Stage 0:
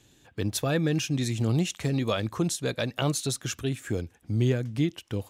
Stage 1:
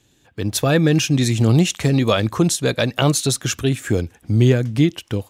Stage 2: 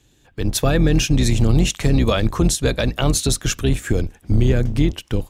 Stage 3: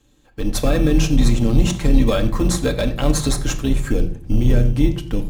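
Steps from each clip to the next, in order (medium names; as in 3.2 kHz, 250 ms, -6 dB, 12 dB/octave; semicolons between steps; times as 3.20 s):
level rider gain up to 11 dB
octave divider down 2 oct, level +1 dB; peak limiter -7.5 dBFS, peak gain reduction 6 dB
in parallel at -7 dB: sample-and-hold 15×; on the sum: reverberation RT60 0.45 s, pre-delay 4 ms, DRR 3 dB; trim -5.5 dB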